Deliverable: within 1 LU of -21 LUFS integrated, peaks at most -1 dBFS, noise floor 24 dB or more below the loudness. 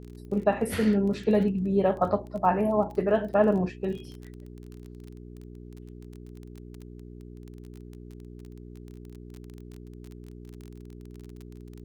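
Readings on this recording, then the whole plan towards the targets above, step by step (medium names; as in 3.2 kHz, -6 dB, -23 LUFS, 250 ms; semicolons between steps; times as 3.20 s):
tick rate 23 per s; hum 60 Hz; highest harmonic 420 Hz; hum level -41 dBFS; loudness -26.0 LUFS; peak level -8.5 dBFS; loudness target -21.0 LUFS
-> de-click; de-hum 60 Hz, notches 7; trim +5 dB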